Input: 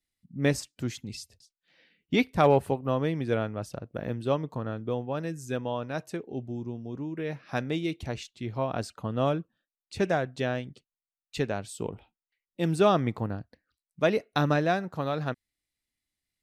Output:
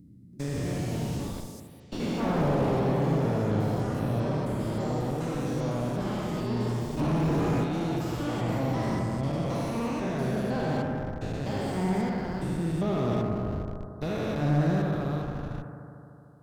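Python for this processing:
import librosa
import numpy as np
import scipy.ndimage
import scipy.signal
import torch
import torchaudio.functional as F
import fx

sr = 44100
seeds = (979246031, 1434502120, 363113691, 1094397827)

p1 = fx.spec_steps(x, sr, hold_ms=400)
p2 = fx.vibrato(p1, sr, rate_hz=9.8, depth_cents=14.0)
p3 = p2 + fx.echo_bbd(p2, sr, ms=75, stages=1024, feedback_pct=84, wet_db=-6.0, dry=0)
p4 = fx.echo_pitch(p3, sr, ms=333, semitones=4, count=3, db_per_echo=-3.0)
p5 = fx.bass_treble(p4, sr, bass_db=1, treble_db=10)
p6 = fx.schmitt(p5, sr, flips_db=-30.5)
p7 = p5 + (p6 * librosa.db_to_amplitude(-9.5))
p8 = fx.low_shelf(p7, sr, hz=260.0, db=5.5)
p9 = fx.leveller(p8, sr, passes=2, at=(6.99, 7.64))
p10 = fx.slew_limit(p9, sr, full_power_hz=51.0)
y = p10 * librosa.db_to_amplitude(-3.5)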